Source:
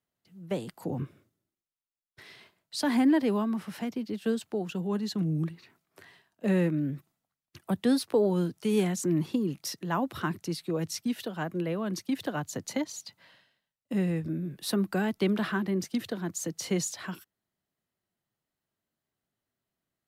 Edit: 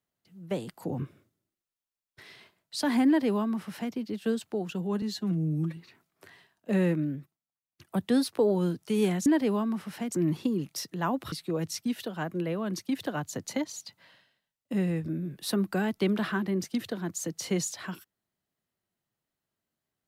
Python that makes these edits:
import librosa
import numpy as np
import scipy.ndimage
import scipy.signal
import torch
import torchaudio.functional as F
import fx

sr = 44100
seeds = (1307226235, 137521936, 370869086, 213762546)

y = fx.edit(x, sr, fx.duplicate(start_s=3.07, length_s=0.86, to_s=9.01),
    fx.stretch_span(start_s=5.02, length_s=0.5, factor=1.5),
    fx.fade_down_up(start_s=6.76, length_s=0.96, db=-17.5, fade_s=0.36),
    fx.cut(start_s=10.21, length_s=0.31), tone=tone)